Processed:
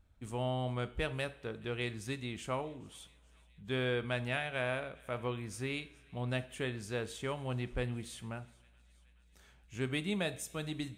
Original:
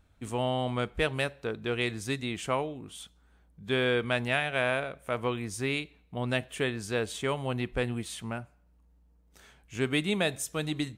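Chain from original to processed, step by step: bass shelf 94 Hz +9 dB; feedback echo behind a high-pass 424 ms, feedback 70%, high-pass 1.9 kHz, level -23.5 dB; two-slope reverb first 0.45 s, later 2.1 s, from -18 dB, DRR 12 dB; trim -8 dB

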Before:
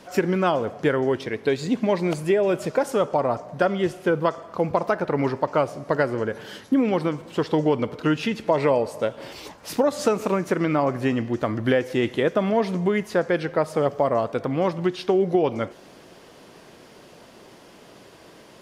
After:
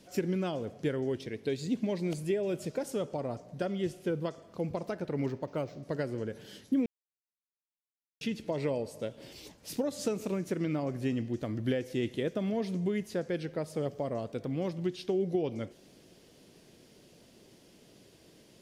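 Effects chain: peaking EQ 1.1 kHz -14.5 dB 1.9 oct; 5.26–5.83 s: decimation joined by straight lines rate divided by 4×; 6.86–8.21 s: mute; trim -6 dB

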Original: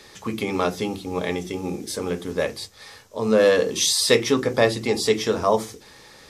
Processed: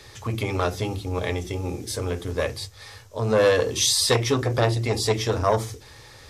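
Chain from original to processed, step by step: resonant low shelf 140 Hz +7.5 dB, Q 3; transformer saturation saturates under 840 Hz

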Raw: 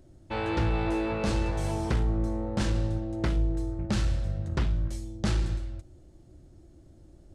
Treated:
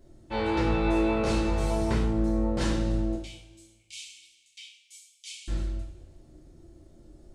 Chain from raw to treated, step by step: 3.15–5.48 s: rippled Chebyshev high-pass 2.2 kHz, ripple 6 dB; two-slope reverb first 0.42 s, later 1.5 s, from -15 dB, DRR -5.5 dB; trim -4.5 dB

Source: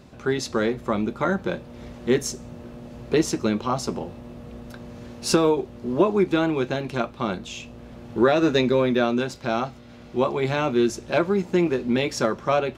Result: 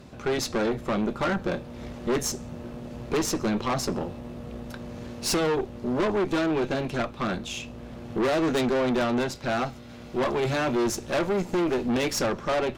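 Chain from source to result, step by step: 9.59–12.22 s: treble shelf 7.8 kHz +6.5 dB; valve stage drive 26 dB, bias 0.6; trim +4.5 dB

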